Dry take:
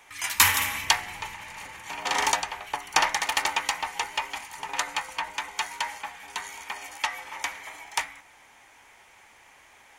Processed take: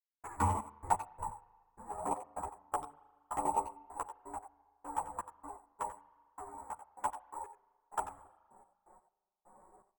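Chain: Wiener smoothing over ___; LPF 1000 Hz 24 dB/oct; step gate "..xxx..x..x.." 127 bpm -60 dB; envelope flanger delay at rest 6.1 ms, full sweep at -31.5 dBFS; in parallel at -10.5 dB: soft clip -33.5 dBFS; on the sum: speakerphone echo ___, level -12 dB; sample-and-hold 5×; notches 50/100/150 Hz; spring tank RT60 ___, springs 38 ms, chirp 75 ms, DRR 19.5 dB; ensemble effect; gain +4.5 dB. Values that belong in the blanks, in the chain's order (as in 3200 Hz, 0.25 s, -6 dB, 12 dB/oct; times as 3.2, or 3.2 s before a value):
15 samples, 90 ms, 1.7 s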